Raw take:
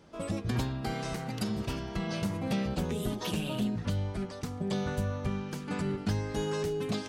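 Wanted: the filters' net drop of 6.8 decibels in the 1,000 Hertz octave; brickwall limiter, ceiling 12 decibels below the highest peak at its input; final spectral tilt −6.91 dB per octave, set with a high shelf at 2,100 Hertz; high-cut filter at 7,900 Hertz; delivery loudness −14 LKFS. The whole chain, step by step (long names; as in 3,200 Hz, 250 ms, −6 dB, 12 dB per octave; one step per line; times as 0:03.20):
low-pass filter 7,900 Hz
parametric band 1,000 Hz −8 dB
high-shelf EQ 2,100 Hz −6 dB
level +27 dB
brickwall limiter −6 dBFS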